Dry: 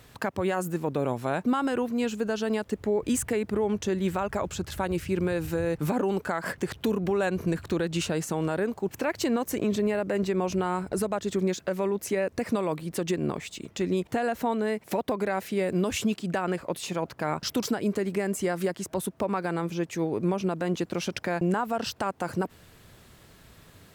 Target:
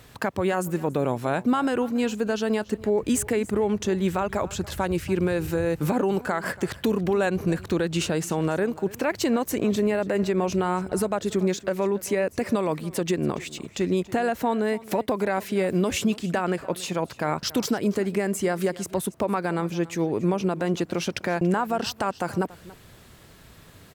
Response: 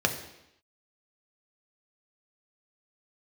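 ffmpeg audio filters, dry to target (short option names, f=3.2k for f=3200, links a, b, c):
-af "aecho=1:1:283:0.106,volume=3dB"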